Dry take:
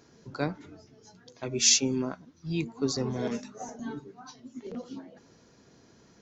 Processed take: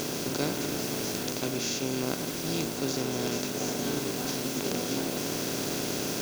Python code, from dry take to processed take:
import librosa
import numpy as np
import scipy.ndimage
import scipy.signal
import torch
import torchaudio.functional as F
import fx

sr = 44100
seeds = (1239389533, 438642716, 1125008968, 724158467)

y = fx.bin_compress(x, sr, power=0.2)
y = fx.lowpass(y, sr, hz=2500.0, slope=6)
y = np.sign(y) * np.maximum(np.abs(y) - 10.0 ** (-37.5 / 20.0), 0.0)
y = fx.quant_dither(y, sr, seeds[0], bits=6, dither='triangular')
y = fx.rider(y, sr, range_db=10, speed_s=0.5)
y = y * 10.0 ** (-4.5 / 20.0)